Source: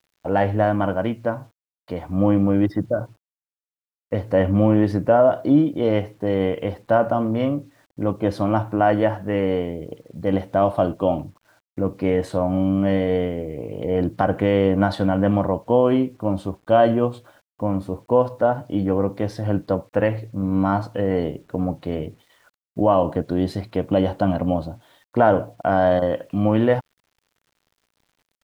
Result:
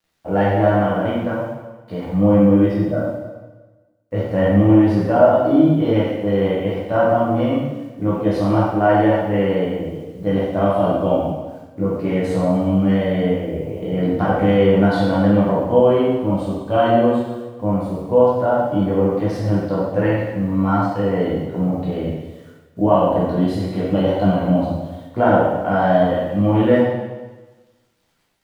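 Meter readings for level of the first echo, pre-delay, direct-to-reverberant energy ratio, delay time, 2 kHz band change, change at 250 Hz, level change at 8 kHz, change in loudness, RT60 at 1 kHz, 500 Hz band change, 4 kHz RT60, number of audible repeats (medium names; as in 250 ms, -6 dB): no echo, 9 ms, -8.0 dB, no echo, +3.5 dB, +4.0 dB, no reading, +3.5 dB, 1.2 s, +3.0 dB, 1.1 s, no echo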